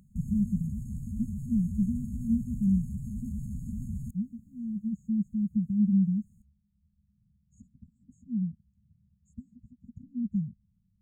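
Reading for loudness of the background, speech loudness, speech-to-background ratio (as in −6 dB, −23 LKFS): −38.0 LKFS, −31.0 LKFS, 7.0 dB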